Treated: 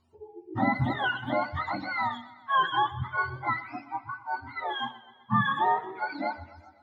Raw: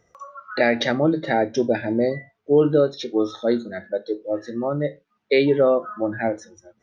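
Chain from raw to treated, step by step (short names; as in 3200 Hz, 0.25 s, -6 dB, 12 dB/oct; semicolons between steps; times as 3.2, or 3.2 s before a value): spectrum mirrored in octaves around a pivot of 690 Hz; warbling echo 0.127 s, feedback 59%, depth 62 cents, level -18 dB; gain -6 dB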